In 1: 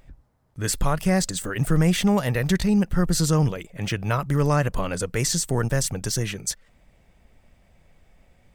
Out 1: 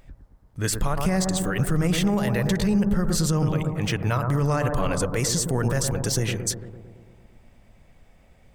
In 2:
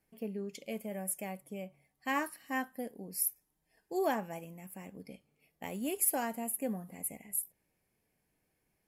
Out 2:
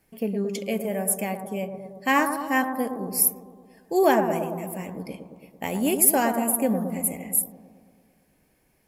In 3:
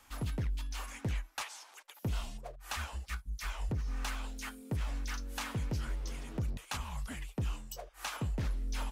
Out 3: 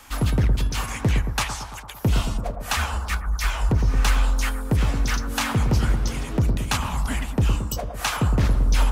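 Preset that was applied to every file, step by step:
analogue delay 0.112 s, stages 1024, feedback 67%, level -7 dB; limiter -15.5 dBFS; match loudness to -24 LUFS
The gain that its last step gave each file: +1.5, +12.0, +14.5 dB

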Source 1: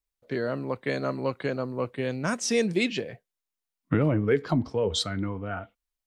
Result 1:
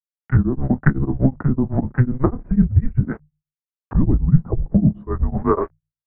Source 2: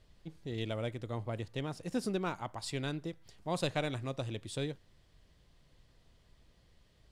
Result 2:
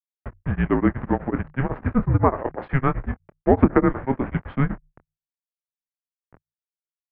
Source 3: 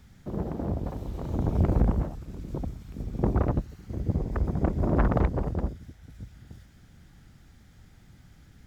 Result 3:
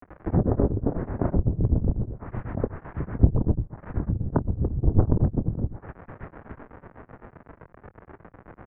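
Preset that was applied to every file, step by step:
level-crossing sampler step -47 dBFS; notches 60/120/180/240/300 Hz; treble ducked by the level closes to 310 Hz, closed at -25 dBFS; bell 230 Hz -11 dB 0.6 oct; doubler 25 ms -12 dB; mistuned SSB -270 Hz 200–2100 Hz; beating tremolo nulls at 8 Hz; normalise peaks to -1.5 dBFS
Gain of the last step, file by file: +22.5, +22.5, +19.5 dB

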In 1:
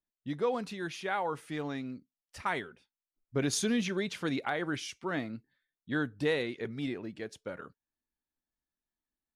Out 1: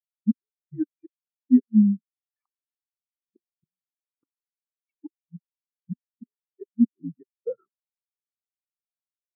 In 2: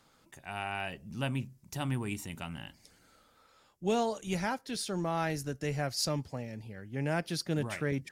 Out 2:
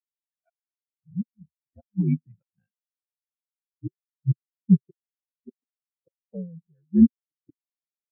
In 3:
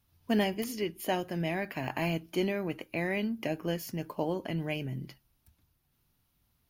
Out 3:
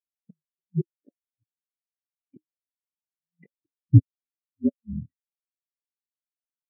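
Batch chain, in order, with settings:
mistuned SSB -55 Hz 180–2600 Hz; flipped gate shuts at -28 dBFS, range -33 dB; spectral expander 4:1; match loudness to -24 LUFS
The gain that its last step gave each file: +20.0, +21.5, +23.0 dB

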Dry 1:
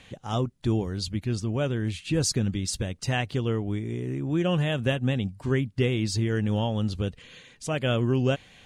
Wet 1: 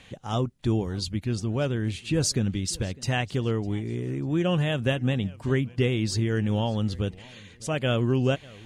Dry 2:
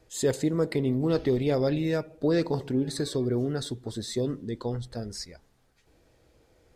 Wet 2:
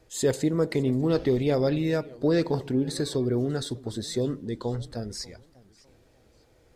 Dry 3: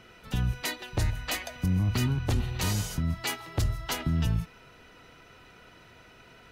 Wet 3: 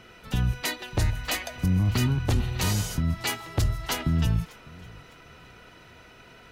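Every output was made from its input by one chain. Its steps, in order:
warbling echo 0.598 s, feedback 31%, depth 195 cents, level -23 dB; match loudness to -27 LUFS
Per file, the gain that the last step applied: +0.5, +1.5, +3.0 dB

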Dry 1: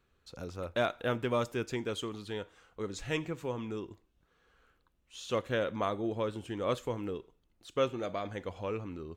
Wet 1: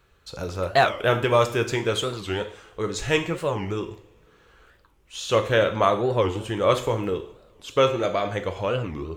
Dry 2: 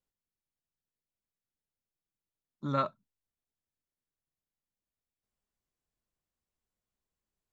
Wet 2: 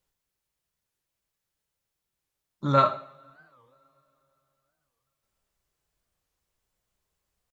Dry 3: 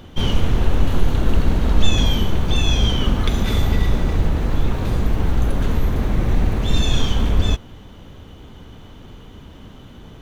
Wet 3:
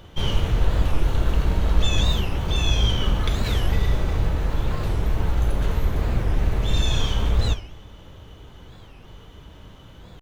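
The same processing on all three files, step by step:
bell 240 Hz -9.5 dB 0.52 oct; two-slope reverb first 0.51 s, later 3.4 s, from -27 dB, DRR 6 dB; record warp 45 rpm, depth 250 cents; match loudness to -24 LUFS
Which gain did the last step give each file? +11.5, +9.5, -3.5 dB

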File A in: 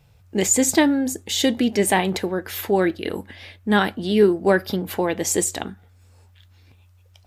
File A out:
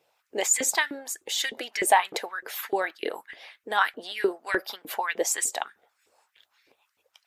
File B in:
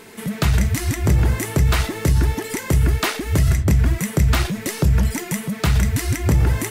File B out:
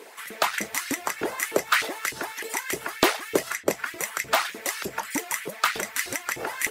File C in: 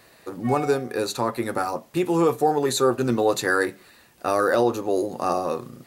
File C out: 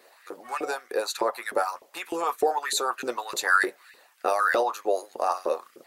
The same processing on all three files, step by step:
harmonic-percussive split harmonic -11 dB; LFO high-pass saw up 3.3 Hz 360–2200 Hz; match loudness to -27 LUFS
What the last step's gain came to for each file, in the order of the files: -3.0, +0.5, -0.5 dB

